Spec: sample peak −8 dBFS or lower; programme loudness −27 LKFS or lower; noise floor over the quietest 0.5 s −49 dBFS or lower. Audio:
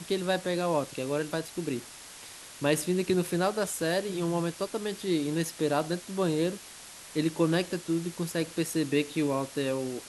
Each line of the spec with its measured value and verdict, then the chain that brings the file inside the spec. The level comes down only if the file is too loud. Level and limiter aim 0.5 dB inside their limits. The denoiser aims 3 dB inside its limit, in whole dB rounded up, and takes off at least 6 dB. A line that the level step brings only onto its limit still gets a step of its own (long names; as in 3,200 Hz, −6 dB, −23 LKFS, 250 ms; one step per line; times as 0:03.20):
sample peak −12.0 dBFS: in spec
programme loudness −30.0 LKFS: in spec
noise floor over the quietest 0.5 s −47 dBFS: out of spec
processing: broadband denoise 6 dB, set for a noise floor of −47 dBFS